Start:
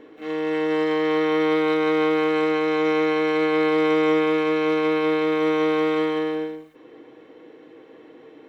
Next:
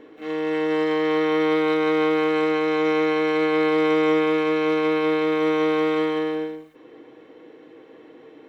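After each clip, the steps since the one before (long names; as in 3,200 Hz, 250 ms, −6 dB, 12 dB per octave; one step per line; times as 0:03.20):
no processing that can be heard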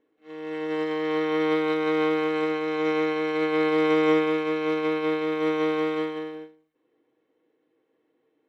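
expander for the loud parts 2.5 to 1, over −34 dBFS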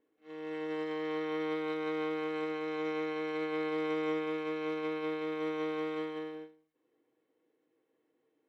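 downward compressor 2 to 1, threshold −29 dBFS, peak gain reduction 7 dB
level −6 dB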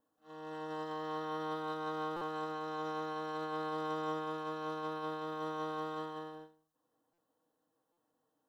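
phaser with its sweep stopped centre 930 Hz, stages 4
buffer that repeats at 0:02.16/0:07.13/0:07.92, samples 256, times 8
level +4 dB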